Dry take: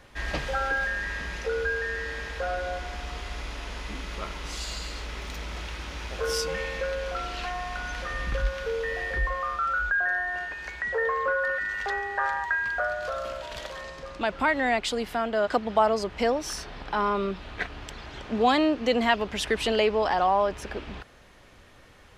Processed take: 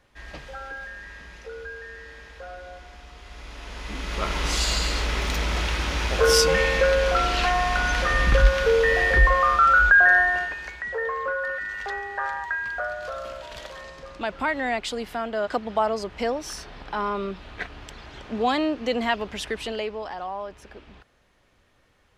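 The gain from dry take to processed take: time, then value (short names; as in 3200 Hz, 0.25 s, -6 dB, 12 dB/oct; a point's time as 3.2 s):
3.16 s -9.5 dB
3.77 s -0.5 dB
4.39 s +10.5 dB
10.2 s +10.5 dB
10.79 s -1.5 dB
19.3 s -1.5 dB
20.14 s -10 dB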